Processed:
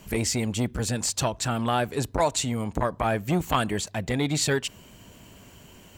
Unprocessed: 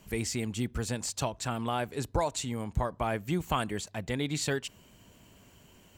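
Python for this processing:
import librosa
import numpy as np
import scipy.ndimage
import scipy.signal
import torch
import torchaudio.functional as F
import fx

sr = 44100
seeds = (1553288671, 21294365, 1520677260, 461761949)

y = fx.transformer_sat(x, sr, knee_hz=580.0)
y = y * 10.0 ** (8.0 / 20.0)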